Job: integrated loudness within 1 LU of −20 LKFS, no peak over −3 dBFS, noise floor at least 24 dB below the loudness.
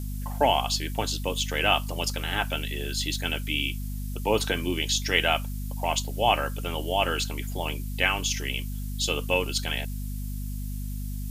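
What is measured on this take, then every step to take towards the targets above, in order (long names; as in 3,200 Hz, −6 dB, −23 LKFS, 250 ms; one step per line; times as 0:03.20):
mains hum 50 Hz; hum harmonics up to 250 Hz; level of the hum −30 dBFS; background noise floor −32 dBFS; target noise floor −52 dBFS; integrated loudness −27.5 LKFS; sample peak −5.5 dBFS; target loudness −20.0 LKFS
→ mains-hum notches 50/100/150/200/250 Hz
noise reduction from a noise print 20 dB
level +7.5 dB
brickwall limiter −3 dBFS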